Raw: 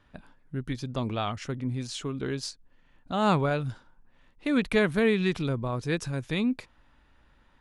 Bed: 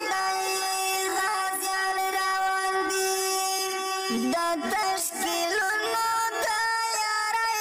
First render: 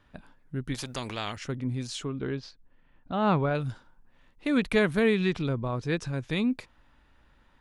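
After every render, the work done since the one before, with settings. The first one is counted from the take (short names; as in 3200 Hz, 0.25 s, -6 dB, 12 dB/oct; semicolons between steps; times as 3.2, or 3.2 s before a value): 0.74–1.37 spectral compressor 2:1; 2.05–3.55 air absorption 250 m; 5.26–6.3 air absorption 58 m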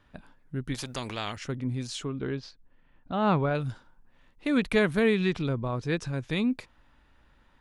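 nothing audible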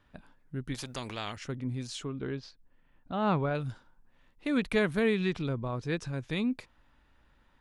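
gain -3.5 dB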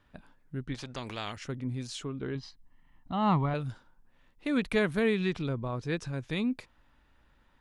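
0.65–1.07 air absorption 83 m; 2.35–3.54 comb 1 ms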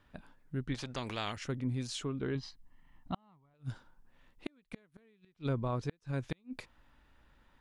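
flipped gate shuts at -22 dBFS, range -39 dB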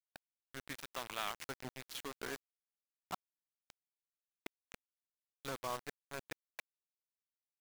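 band-pass 1500 Hz, Q 0.69; bit-crush 7-bit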